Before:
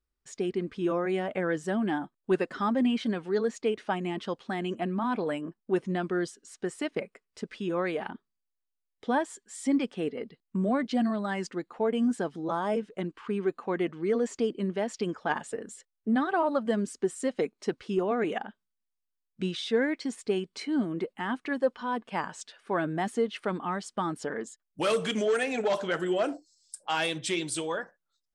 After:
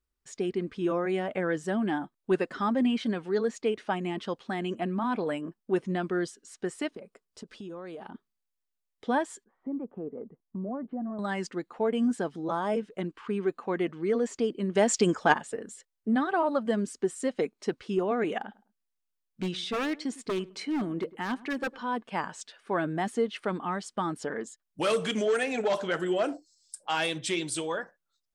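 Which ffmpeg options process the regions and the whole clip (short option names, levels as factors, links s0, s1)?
-filter_complex "[0:a]asettb=1/sr,asplit=3[s0][s1][s2];[s0]atrim=end=6.894[s3];[s1]atrim=start=6.89:end=8.14,asetpts=PTS-STARTPTS,afade=t=in:d=0.004:c=qsin,afade=t=out:st=1.246:d=0.004:c=qsin,equalizer=f=2100:t=o:w=0.77:g=-9.5,acompressor=threshold=0.0126:ratio=6:attack=3.2:release=140:knee=1:detection=peak[s4];[s2]atrim=start=8.136[s5];[s3][s4]acrossfade=d=0.004:c1=hsin:c2=qsin[s6];[s6][s5]acrossfade=d=0.004:c1=qsin:c2=hsin,asettb=1/sr,asplit=3[s7][s8][s9];[s7]atrim=end=9.444[s10];[s8]atrim=start=9.44:end=11.19,asetpts=PTS-STARTPTS,afade=t=in:d=0.004:c=qsin,afade=t=out:st=1.746:d=0.004:c=qsin,lowpass=f=1100:w=0.5412,lowpass=f=1100:w=1.3066,acompressor=threshold=0.0141:ratio=2:attack=3.2:release=140:knee=1:detection=peak[s11];[s9]atrim=start=11.186[s12];[s10][s11]acrossfade=d=0.004:c1=hsin:c2=qsin[s13];[s13][s12]acrossfade=d=0.004:c1=qsin:c2=hsin,asettb=1/sr,asplit=3[s14][s15][s16];[s14]atrim=end=14.754[s17];[s15]atrim=start=14.75:end=15.34,asetpts=PTS-STARTPTS,afade=t=in:d=0.004:c=qsin,afade=t=out:st=0.586:d=0.004:c=qsin,equalizer=f=7600:t=o:w=0.73:g=11,acontrast=87[s18];[s16]atrim=start=15.336[s19];[s17][s18]acrossfade=d=0.004:c1=hsin:c2=qsin[s20];[s20][s19]acrossfade=d=0.004:c1=qsin:c2=hsin,asettb=1/sr,asplit=3[s21][s22][s23];[s21]atrim=end=18.384[s24];[s22]atrim=start=18.38:end=21.86,asetpts=PTS-STARTPTS,afade=t=in:d=0.004:c=qsin,afade=t=out:st=3.476:d=0.004:c=qsin,aeval=exprs='0.0631*(abs(mod(val(0)/0.0631+3,4)-2)-1)':c=same,asplit=2[s25][s26];[s26]adelay=105,lowpass=f=1100:p=1,volume=0.112,asplit=2[s27][s28];[s28]adelay=105,lowpass=f=1100:p=1,volume=0.29[s29];[s25][s27][s29]amix=inputs=3:normalize=0,atrim=end_sample=153468[s30];[s23]atrim=start=21.856[s31];[s24][s30]acrossfade=d=0.004:c1=hsin:c2=qsin[s32];[s32][s31]acrossfade=d=0.004:c1=qsin:c2=hsin"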